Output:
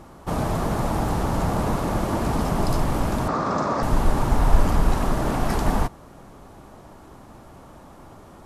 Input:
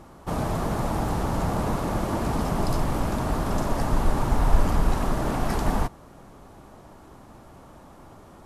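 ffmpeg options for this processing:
-filter_complex "[0:a]asettb=1/sr,asplit=3[s0][s1][s2];[s0]atrim=end=3.284[s3];[s1]atrim=start=3.28:end=3.83,asetpts=PTS-STARTPTS,afade=t=in:d=0.004:c=qsin,afade=t=out:st=0.546:d=0.004:c=qsin,highpass=150,equalizer=f=530:t=q:w=4:g=4,equalizer=f=1200:t=q:w=4:g=10,equalizer=f=3000:t=q:w=4:g=-8,lowpass=f=6400:w=0.5412,lowpass=f=6400:w=1.3066[s4];[s2]atrim=start=3.826[s5];[s3][s4]acrossfade=d=0.004:c1=hsin:c2=qsin[s6];[s6][s5]acrossfade=d=0.004:c1=qsin:c2=hsin,volume=1.33"

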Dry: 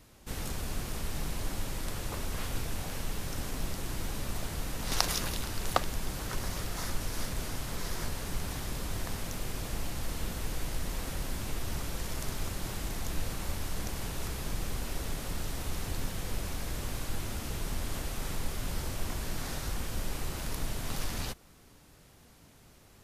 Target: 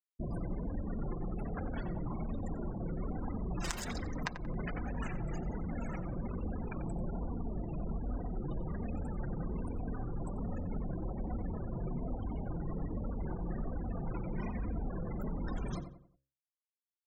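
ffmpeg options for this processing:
-filter_complex "[0:a]highpass=f=45:p=1,afftfilt=real='re*gte(hypot(re,im),0.0224)':imag='im*gte(hypot(re,im),0.0224)':win_size=1024:overlap=0.75,bass=f=250:g=5,treble=f=4000:g=-8,bandreject=f=50:t=h:w=6,bandreject=f=100:t=h:w=6,bandreject=f=150:t=h:w=6,bandreject=f=200:t=h:w=6,bandreject=f=250:t=h:w=6,bandreject=f=300:t=h:w=6,bandreject=f=350:t=h:w=6,bandreject=f=400:t=h:w=6,bandreject=f=450:t=h:w=6,acrossover=split=380|2900[s0][s1][s2];[s0]alimiter=level_in=3.16:limit=0.0631:level=0:latency=1:release=12,volume=0.316[s3];[s3][s1][s2]amix=inputs=3:normalize=0,acompressor=threshold=0.00501:ratio=8,flanger=delay=5.1:depth=3:regen=-27:speed=0.91:shape=sinusoidal,asplit=2[s4][s5];[s5]adelay=122,lowpass=f=1500:p=1,volume=0.355,asplit=2[s6][s7];[s7]adelay=122,lowpass=f=1500:p=1,volume=0.4,asplit=2[s8][s9];[s9]adelay=122,lowpass=f=1500:p=1,volume=0.4,asplit=2[s10][s11];[s11]adelay=122,lowpass=f=1500:p=1,volume=0.4[s12];[s6][s8][s10][s12]amix=inputs=4:normalize=0[s13];[s4][s13]amix=inputs=2:normalize=0,asetrate=59535,aresample=44100,volume=5.31"

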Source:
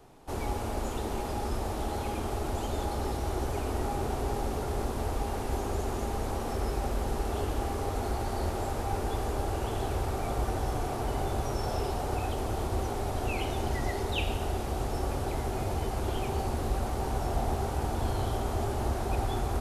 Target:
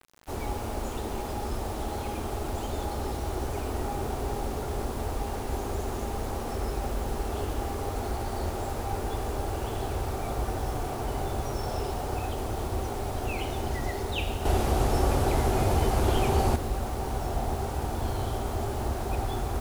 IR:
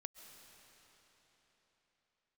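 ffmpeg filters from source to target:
-filter_complex "[0:a]asettb=1/sr,asplit=3[s0][s1][s2];[s0]atrim=end=14.454[s3];[s1]atrim=start=14.45:end=16.56,asetpts=PTS-STARTPTS,afade=t=in:d=0.004:c=qsin,afade=t=out:st=2.106:d=0.004:c=qsin,acontrast=88[s4];[s2]atrim=start=16.556[s5];[s3][s4]acrossfade=d=0.004:c1=hsin:c2=qsin[s6];[s6][s5]acrossfade=d=0.004:c1=qsin:c2=hsin,acrusher=bits=7:mix=0:aa=0.000001"

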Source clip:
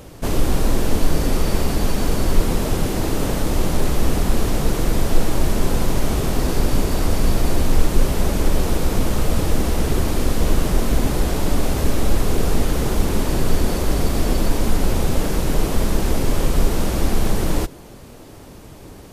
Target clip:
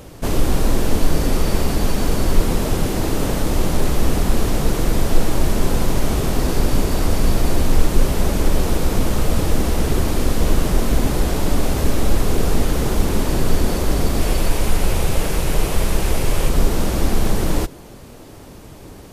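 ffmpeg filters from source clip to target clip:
-filter_complex "[0:a]asettb=1/sr,asplit=3[s0][s1][s2];[s0]atrim=end=14.214[s3];[s1]atrim=start=14.21:end=16.49,asetpts=PTS-STARTPTS,afade=t=in:d=0.004:c=qsin,afade=t=out:st=2.276:d=0.004:c=qsin,equalizer=f=250:t=o:w=0.67:g=-7,equalizer=f=2500:t=o:w=0.67:g=4,equalizer=f=10000:t=o:w=0.67:g=3[s4];[s2]atrim=start=16.486[s5];[s3][s4]acrossfade=d=0.004:c1=hsin:c2=qsin[s6];[s6][s5]acrossfade=d=0.004:c1=qsin:c2=hsin,volume=1.12"

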